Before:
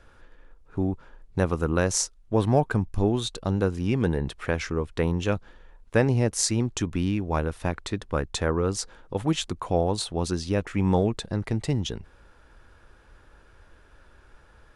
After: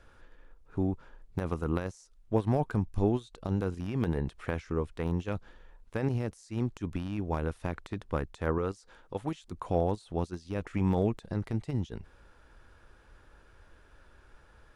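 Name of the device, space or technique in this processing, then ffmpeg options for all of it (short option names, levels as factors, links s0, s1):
de-esser from a sidechain: -filter_complex "[0:a]asettb=1/sr,asplit=3[s0][s1][s2];[s0]atrim=end=8.584[s3];[s1]atrim=start=8.58:end=9.44,asetpts=PTS-STARTPTS,afade=t=in:d=0.004:c=qsin,afade=t=out:st=0.856:d=0.004:c=qsin,lowshelf=f=420:g=-5.5[s4];[s2]atrim=start=9.436[s5];[s3][s4]acrossfade=d=0.004:c1=hsin:c2=qsin[s6];[s6][s5]acrossfade=d=0.004:c1=qsin:c2=hsin,asplit=2[s7][s8];[s8]highpass=f=4400:w=0.5412,highpass=f=4400:w=1.3066,apad=whole_len=650614[s9];[s7][s9]sidechaincompress=threshold=0.00126:ratio=4:attack=3.2:release=32,volume=0.668"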